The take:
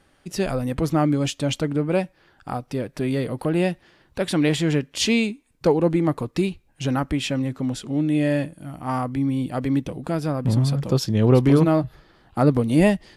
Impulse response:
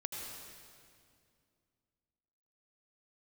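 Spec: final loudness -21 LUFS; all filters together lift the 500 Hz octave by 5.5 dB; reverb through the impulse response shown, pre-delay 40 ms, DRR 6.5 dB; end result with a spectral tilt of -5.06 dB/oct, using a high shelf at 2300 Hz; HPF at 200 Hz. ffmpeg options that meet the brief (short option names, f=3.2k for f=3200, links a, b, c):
-filter_complex "[0:a]highpass=200,equalizer=f=500:t=o:g=6.5,highshelf=f=2.3k:g=5.5,asplit=2[a][b];[1:a]atrim=start_sample=2205,adelay=40[c];[b][c]afir=irnorm=-1:irlink=0,volume=-7dB[d];[a][d]amix=inputs=2:normalize=0,volume=-1dB"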